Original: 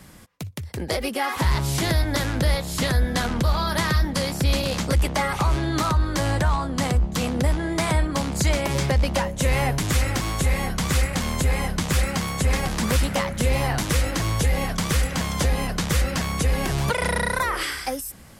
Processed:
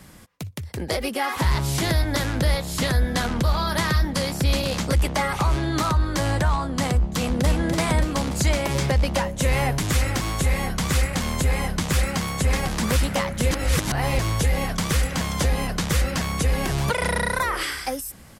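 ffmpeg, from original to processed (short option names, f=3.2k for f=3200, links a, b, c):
-filter_complex "[0:a]asplit=2[a][b];[b]afade=t=in:st=7:d=0.01,afade=t=out:st=7.45:d=0.01,aecho=0:1:290|580|870|1160|1450|1740|2030|2320|2610|2900:0.595662|0.38718|0.251667|0.163584|0.106329|0.0691141|0.0449242|0.0292007|0.0189805|0.0123373[c];[a][c]amix=inputs=2:normalize=0,asplit=3[d][e][f];[d]atrim=end=13.512[g];[e]atrim=start=13.508:end=14.192,asetpts=PTS-STARTPTS,areverse[h];[f]atrim=start=14.188[i];[g][h]acrossfade=d=0.004:c1=hsin:c2=hsin[j];[j][i]acrossfade=d=0.004:c1=hsin:c2=hsin"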